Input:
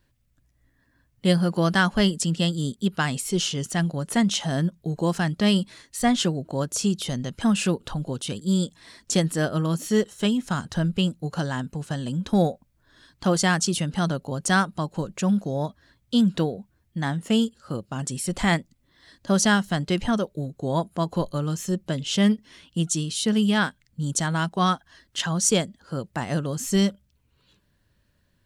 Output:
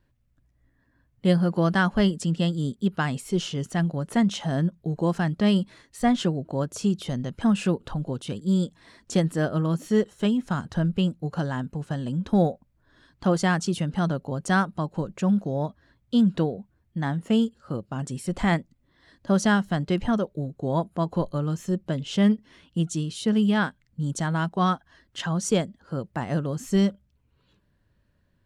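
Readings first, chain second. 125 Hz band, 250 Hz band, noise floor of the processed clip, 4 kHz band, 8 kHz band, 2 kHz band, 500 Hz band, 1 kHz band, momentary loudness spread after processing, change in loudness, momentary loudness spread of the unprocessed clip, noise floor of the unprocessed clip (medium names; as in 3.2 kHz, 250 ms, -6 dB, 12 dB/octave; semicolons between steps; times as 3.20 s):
0.0 dB, 0.0 dB, -68 dBFS, -7.0 dB, -10.0 dB, -3.0 dB, -0.5 dB, -1.5 dB, 9 LU, -1.0 dB, 9 LU, -67 dBFS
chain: treble shelf 2.8 kHz -11.5 dB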